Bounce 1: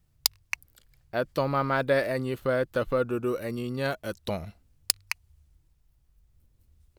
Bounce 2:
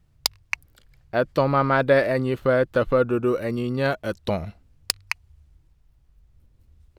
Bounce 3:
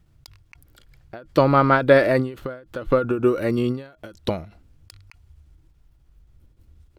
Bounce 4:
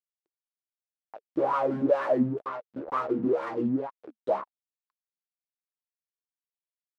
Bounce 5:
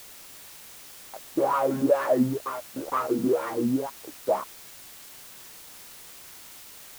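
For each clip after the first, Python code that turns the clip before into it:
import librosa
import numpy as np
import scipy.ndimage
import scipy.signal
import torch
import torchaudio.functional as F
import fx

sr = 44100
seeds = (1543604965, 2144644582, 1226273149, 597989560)

y1 = fx.lowpass(x, sr, hz=3300.0, slope=6)
y1 = F.gain(torch.from_numpy(y1), 6.5).numpy()
y2 = fx.small_body(y1, sr, hz=(320.0, 1400.0, 3300.0), ring_ms=45, db=6)
y2 = fx.end_taper(y2, sr, db_per_s=130.0)
y2 = F.gain(torch.from_numpy(y2), 3.5).numpy()
y3 = fx.stiff_resonator(y2, sr, f0_hz=65.0, decay_s=0.43, stiffness=0.002)
y3 = fx.fuzz(y3, sr, gain_db=42.0, gate_db=-41.0)
y3 = fx.wah_lfo(y3, sr, hz=2.1, low_hz=210.0, high_hz=1100.0, q=6.8)
y4 = fx.quant_dither(y3, sr, seeds[0], bits=8, dither='triangular')
y4 = F.gain(torch.from_numpy(y4), 2.0).numpy()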